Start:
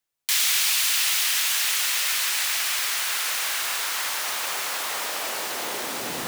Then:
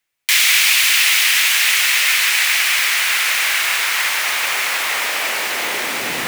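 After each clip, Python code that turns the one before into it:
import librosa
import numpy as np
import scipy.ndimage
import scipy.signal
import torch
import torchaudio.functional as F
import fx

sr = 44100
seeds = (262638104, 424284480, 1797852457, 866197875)

y = fx.peak_eq(x, sr, hz=2200.0, db=10.0, octaves=1.0)
y = y * librosa.db_to_amplitude(5.0)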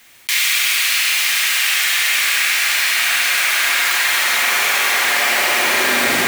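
y = fx.rider(x, sr, range_db=10, speed_s=0.5)
y = fx.rev_fdn(y, sr, rt60_s=3.2, lf_ratio=1.0, hf_ratio=0.6, size_ms=25.0, drr_db=-5.0)
y = fx.env_flatten(y, sr, amount_pct=50)
y = y * librosa.db_to_amplitude(-6.5)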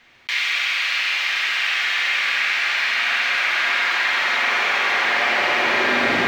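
y = fx.air_absorb(x, sr, metres=230.0)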